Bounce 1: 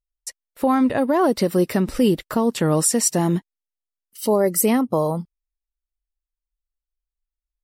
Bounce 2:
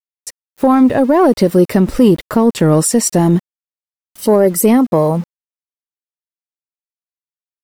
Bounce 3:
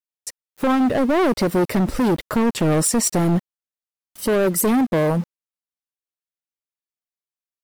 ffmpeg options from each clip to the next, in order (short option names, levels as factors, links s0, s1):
-af "acontrast=68,aeval=exprs='val(0)*gte(abs(val(0)),0.0251)':c=same,tiltshelf=f=1100:g=3"
-af "volume=3.98,asoftclip=hard,volume=0.251,volume=0.708"